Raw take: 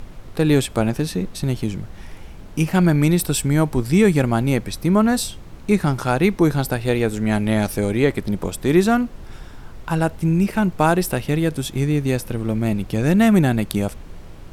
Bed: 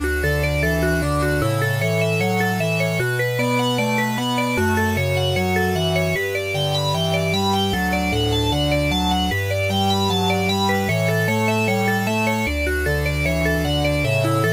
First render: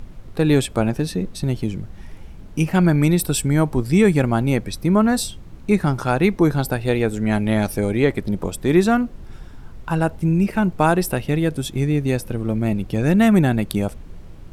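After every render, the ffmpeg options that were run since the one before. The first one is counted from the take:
ffmpeg -i in.wav -af "afftdn=noise_reduction=6:noise_floor=-38" out.wav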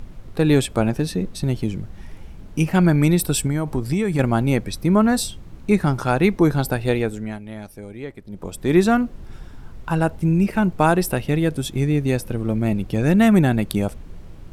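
ffmpeg -i in.wav -filter_complex "[0:a]asettb=1/sr,asplit=3[link_01][link_02][link_03];[link_01]atrim=end=3.464[link_04];[link_02]atrim=start=3.46:end=4.19,asetpts=PTS-STARTPTS,afade=type=in:duration=0.004:curve=qsin,afade=type=out:start_time=0.726:duration=0.004:curve=qsin,acompressor=threshold=-16dB:ratio=10:attack=3.2:release=140:knee=1:detection=peak[link_05];[link_03]atrim=start=4.186[link_06];[link_04][link_05]acrossfade=duration=0.004:curve1=hsin:curve2=qsin[link_07];[link_07][link_06]acrossfade=duration=0.004:curve1=qsin:curve2=hsin,asplit=3[link_08][link_09][link_10];[link_08]atrim=end=7.39,asetpts=PTS-STARTPTS,afade=type=out:start_time=6.89:duration=0.5:silence=0.16788[link_11];[link_09]atrim=start=7.39:end=8.28,asetpts=PTS-STARTPTS,volume=-15.5dB[link_12];[link_10]atrim=start=8.28,asetpts=PTS-STARTPTS,afade=type=in:duration=0.5:silence=0.16788[link_13];[link_11][link_12][link_13]concat=n=3:v=0:a=1" out.wav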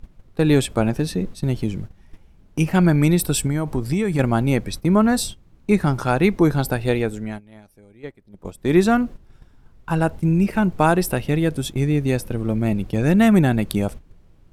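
ffmpeg -i in.wav -af "agate=range=-13dB:threshold=-30dB:ratio=16:detection=peak" out.wav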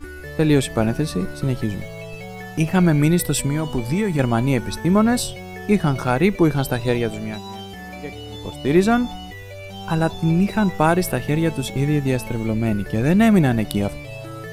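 ffmpeg -i in.wav -i bed.wav -filter_complex "[1:a]volume=-15dB[link_01];[0:a][link_01]amix=inputs=2:normalize=0" out.wav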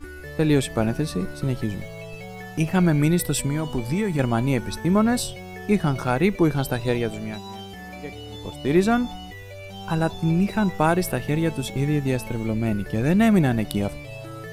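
ffmpeg -i in.wav -af "volume=-3dB" out.wav

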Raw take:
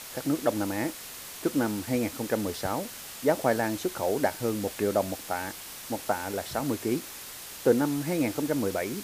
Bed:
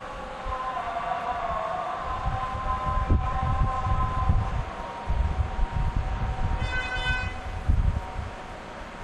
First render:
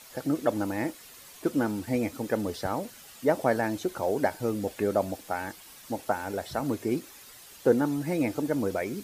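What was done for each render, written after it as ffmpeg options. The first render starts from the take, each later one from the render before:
ffmpeg -i in.wav -af "afftdn=noise_reduction=10:noise_floor=-42" out.wav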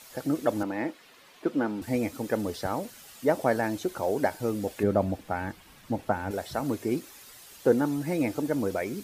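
ffmpeg -i in.wav -filter_complex "[0:a]asettb=1/sr,asplit=3[link_01][link_02][link_03];[link_01]atrim=end=0.634[link_04];[link_02]atrim=start=0.63:end=1.82,asetpts=PTS-STARTPTS,afade=type=in:duration=0.004:curve=qsin,afade=type=out:start_time=1.186:duration=0.004:curve=qsin,acrossover=split=160 4200:gain=0.224 1 0.178[link_05][link_06][link_07];[link_05][link_06][link_07]amix=inputs=3:normalize=0[link_08];[link_03]atrim=start=1.816[link_09];[link_04][link_08]acrossfade=duration=0.004:curve1=hsin:curve2=qsin[link_10];[link_10][link_09]acrossfade=duration=0.004:curve1=qsin:curve2=hsin,asettb=1/sr,asplit=3[link_11][link_12][link_13];[link_11]atrim=end=4.834[link_14];[link_12]atrim=start=4.83:end=6.31,asetpts=PTS-STARTPTS,afade=type=in:duration=0.004:curve=qsin,afade=type=out:start_time=1.476:duration=0.004:curve=qsin,bass=frequency=250:gain=9,treble=frequency=4000:gain=-10[link_15];[link_13]atrim=start=6.306[link_16];[link_14][link_15]acrossfade=duration=0.004:curve1=hsin:curve2=qsin[link_17];[link_17][link_16]acrossfade=duration=0.004:curve1=qsin:curve2=hsin" out.wav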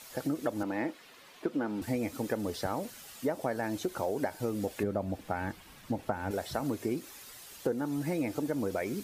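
ffmpeg -i in.wav -af "acompressor=threshold=-28dB:ratio=6" out.wav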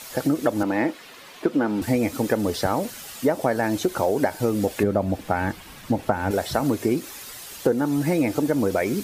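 ffmpeg -i in.wav -af "volume=10.5dB" out.wav

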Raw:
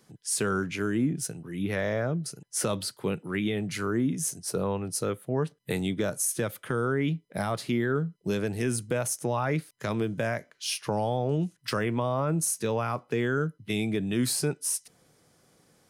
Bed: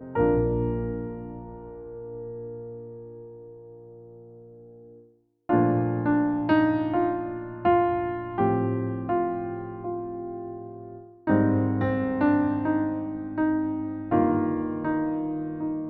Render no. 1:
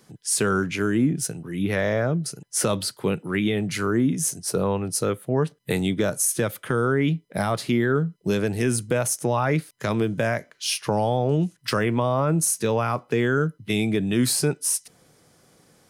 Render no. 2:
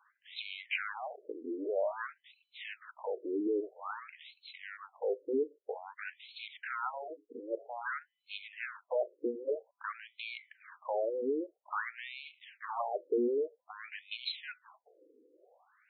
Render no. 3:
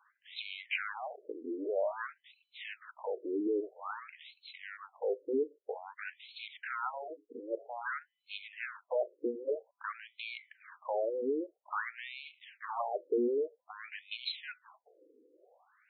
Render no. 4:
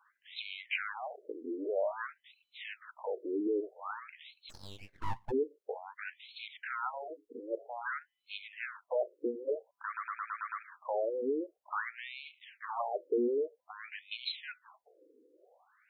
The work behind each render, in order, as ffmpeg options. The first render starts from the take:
ffmpeg -i in.wav -af "volume=5.5dB" out.wav
ffmpeg -i in.wav -af "aeval=exprs='(tanh(14.1*val(0)+0.05)-tanh(0.05))/14.1':channel_layout=same,afftfilt=real='re*between(b*sr/1024,360*pow(3100/360,0.5+0.5*sin(2*PI*0.51*pts/sr))/1.41,360*pow(3100/360,0.5+0.5*sin(2*PI*0.51*pts/sr))*1.41)':imag='im*between(b*sr/1024,360*pow(3100/360,0.5+0.5*sin(2*PI*0.51*pts/sr))/1.41,360*pow(3100/360,0.5+0.5*sin(2*PI*0.51*pts/sr))*1.41)':win_size=1024:overlap=0.75" out.wav
ffmpeg -i in.wav -af anull out.wav
ffmpeg -i in.wav -filter_complex "[0:a]asplit=3[link_01][link_02][link_03];[link_01]afade=type=out:start_time=4.49:duration=0.02[link_04];[link_02]aeval=exprs='abs(val(0))':channel_layout=same,afade=type=in:start_time=4.49:duration=0.02,afade=type=out:start_time=5.3:duration=0.02[link_05];[link_03]afade=type=in:start_time=5.3:duration=0.02[link_06];[link_04][link_05][link_06]amix=inputs=3:normalize=0,asplit=8[link_07][link_08][link_09][link_10][link_11][link_12][link_13][link_14];[link_07]atrim=end=9.972[link_15];[link_08]atrim=start=9.858:end=9.972[link_16];[link_09]atrim=start=9.858:end=9.972[link_17];[link_10]atrim=start=9.858:end=9.972[link_18];[link_11]atrim=start=9.858:end=9.972[link_19];[link_12]atrim=start=9.858:end=9.972[link_20];[link_13]atrim=start=9.858:end=9.972[link_21];[link_14]atrim=start=10.628[link_22];[link_15][link_16]acrossfade=duration=0.004:curve1=hsin:curve2=hsin[link_23];[link_23][link_17]acrossfade=duration=0.004:curve1=hsin:curve2=hsin[link_24];[link_24][link_18]acrossfade=duration=0.004:curve1=hsin:curve2=hsin[link_25];[link_25][link_19]acrossfade=duration=0.004:curve1=hsin:curve2=hsin[link_26];[link_26][link_20]acrossfade=duration=0.004:curve1=hsin:curve2=hsin[link_27];[link_27][link_21]acrossfade=duration=0.004:curve1=hsin:curve2=hsin[link_28];[link_28][link_22]acrossfade=duration=0.004:curve1=hsin:curve2=hsin" out.wav

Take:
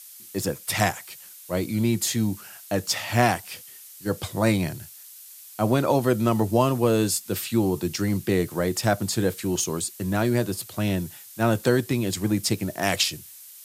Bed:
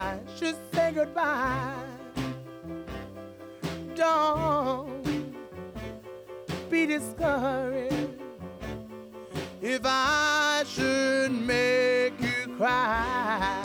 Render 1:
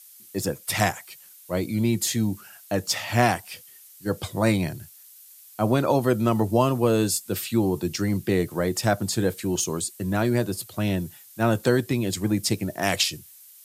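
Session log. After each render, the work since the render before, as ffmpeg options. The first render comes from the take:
ffmpeg -i in.wav -af "afftdn=noise_reduction=6:noise_floor=-45" out.wav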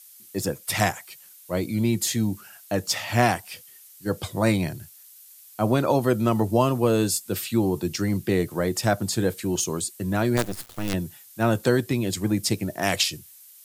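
ffmpeg -i in.wav -filter_complex "[0:a]asettb=1/sr,asplit=3[link_01][link_02][link_03];[link_01]atrim=end=10.374[link_04];[link_02]atrim=start=10.37:end=10.94,asetpts=PTS-STARTPTS,afade=type=in:duration=0.004:curve=qsin,afade=type=out:start_time=0.566:duration=0.004:curve=qsin,acrusher=bits=4:dc=4:mix=0:aa=0.000001[link_05];[link_03]atrim=start=10.936[link_06];[link_04][link_05]acrossfade=duration=0.004:curve1=hsin:curve2=qsin[link_07];[link_07][link_06]acrossfade=duration=0.004:curve1=qsin:curve2=hsin" out.wav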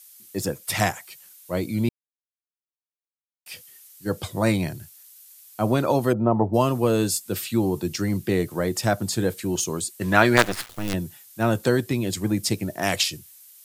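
ffmpeg -i in.wav -filter_complex "[0:a]asplit=3[link_01][link_02][link_03];[link_01]afade=type=out:start_time=6.12:duration=0.02[link_04];[link_02]lowpass=frequency=840:width_type=q:width=2,afade=type=in:start_time=6.12:duration=0.02,afade=type=out:start_time=6.53:duration=0.02[link_05];[link_03]afade=type=in:start_time=6.53:duration=0.02[link_06];[link_04][link_05][link_06]amix=inputs=3:normalize=0,asettb=1/sr,asplit=3[link_07][link_08][link_09];[link_07]atrim=end=10.014[link_10];[link_08]atrim=start=10.01:end=10.69,asetpts=PTS-STARTPTS,afade=type=in:duration=0.004:curve=qsin,afade=type=out:start_time=0.676:duration=0.004:curve=qsin,equalizer=frequency=1800:width=0.35:gain=13.5[link_11];[link_09]atrim=start=10.686[link_12];[link_10][link_11]acrossfade=duration=0.004:curve1=hsin:curve2=qsin[link_13];[link_13][link_12]acrossfade=duration=0.004:curve1=qsin:curve2=hsin,asplit=3[link_14][link_15][link_16];[link_14]atrim=end=1.89,asetpts=PTS-STARTPTS,afade=type=out:start_time=1.886:duration=0.004:curve=hsin[link_17];[link_15]atrim=start=1.89:end=3.46,asetpts=PTS-STARTPTS,volume=0[link_18];[link_16]atrim=start=3.46,asetpts=PTS-STARTPTS,afade=type=in:duration=0.004:curve=hsin[link_19];[link_17][link_18][link_19]concat=n=3:v=0:a=1" out.wav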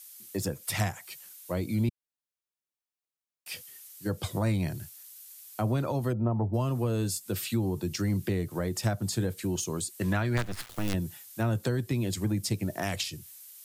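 ffmpeg -i in.wav -filter_complex "[0:a]acrossover=split=150[link_01][link_02];[link_02]acompressor=threshold=-30dB:ratio=6[link_03];[link_01][link_03]amix=inputs=2:normalize=0" out.wav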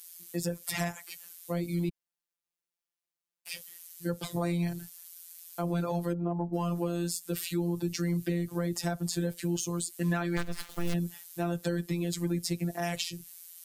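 ffmpeg -i in.wav -filter_complex "[0:a]afftfilt=real='hypot(re,im)*cos(PI*b)':imag='0':win_size=1024:overlap=0.75,asplit=2[link_01][link_02];[link_02]asoftclip=type=tanh:threshold=-26.5dB,volume=-7.5dB[link_03];[link_01][link_03]amix=inputs=2:normalize=0" out.wav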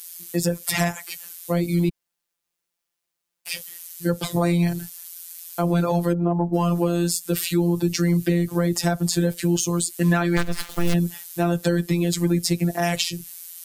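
ffmpeg -i in.wav -af "volume=10dB" out.wav

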